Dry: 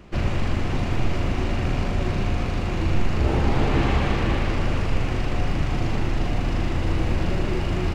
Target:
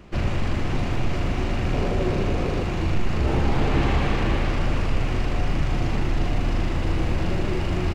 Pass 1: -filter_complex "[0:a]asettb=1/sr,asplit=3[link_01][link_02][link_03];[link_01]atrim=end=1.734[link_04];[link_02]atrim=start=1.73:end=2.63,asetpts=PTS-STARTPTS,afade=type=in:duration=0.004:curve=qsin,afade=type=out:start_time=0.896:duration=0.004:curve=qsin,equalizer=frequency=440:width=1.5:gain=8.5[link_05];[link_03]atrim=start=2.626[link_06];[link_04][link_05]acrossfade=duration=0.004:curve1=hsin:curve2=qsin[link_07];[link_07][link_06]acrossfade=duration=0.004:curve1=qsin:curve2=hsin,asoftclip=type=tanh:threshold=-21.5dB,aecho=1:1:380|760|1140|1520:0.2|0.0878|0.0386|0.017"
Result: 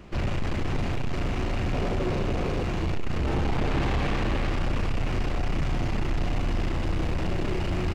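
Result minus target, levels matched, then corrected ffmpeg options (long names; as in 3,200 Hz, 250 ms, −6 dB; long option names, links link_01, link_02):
soft clipping: distortion +15 dB
-filter_complex "[0:a]asettb=1/sr,asplit=3[link_01][link_02][link_03];[link_01]atrim=end=1.734[link_04];[link_02]atrim=start=1.73:end=2.63,asetpts=PTS-STARTPTS,afade=type=in:duration=0.004:curve=qsin,afade=type=out:start_time=0.896:duration=0.004:curve=qsin,equalizer=frequency=440:width=1.5:gain=8.5[link_05];[link_03]atrim=start=2.626[link_06];[link_04][link_05]acrossfade=duration=0.004:curve1=hsin:curve2=qsin[link_07];[link_07][link_06]acrossfade=duration=0.004:curve1=qsin:curve2=hsin,asoftclip=type=tanh:threshold=-9.5dB,aecho=1:1:380|760|1140|1520:0.2|0.0878|0.0386|0.017"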